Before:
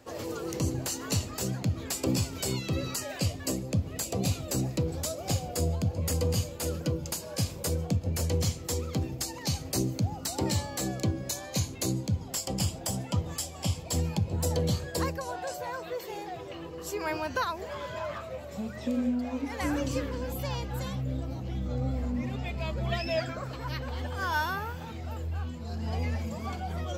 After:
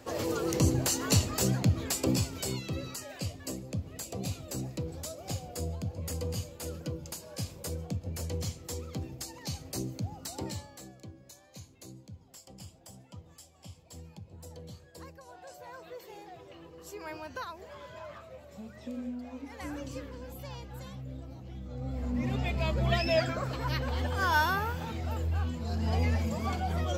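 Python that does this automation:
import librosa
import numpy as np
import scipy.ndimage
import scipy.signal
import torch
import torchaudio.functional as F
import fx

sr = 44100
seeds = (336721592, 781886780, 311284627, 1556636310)

y = fx.gain(x, sr, db=fx.line((1.57, 4.0), (2.97, -7.0), (10.38, -7.0), (10.96, -19.0), (14.93, -19.0), (15.81, -9.5), (21.71, -9.5), (22.32, 3.0)))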